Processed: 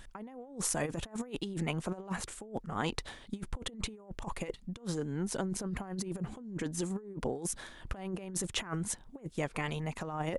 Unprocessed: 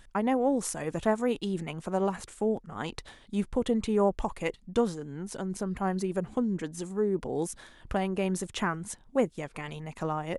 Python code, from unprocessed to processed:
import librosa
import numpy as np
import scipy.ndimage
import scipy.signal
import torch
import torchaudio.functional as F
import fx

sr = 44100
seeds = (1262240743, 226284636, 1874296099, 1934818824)

y = fx.over_compress(x, sr, threshold_db=-34.0, ratio=-0.5)
y = y * 10.0 ** (-2.0 / 20.0)